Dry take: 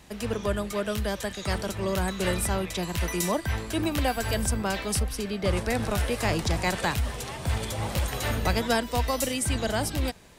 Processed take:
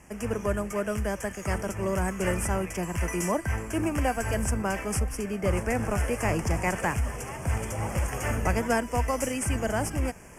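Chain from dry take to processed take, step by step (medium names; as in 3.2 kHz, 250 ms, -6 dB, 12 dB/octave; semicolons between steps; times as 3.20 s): CVSD coder 64 kbps; reverse; upward compressor, threshold -40 dBFS; reverse; Butterworth band-stop 3.9 kHz, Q 1.3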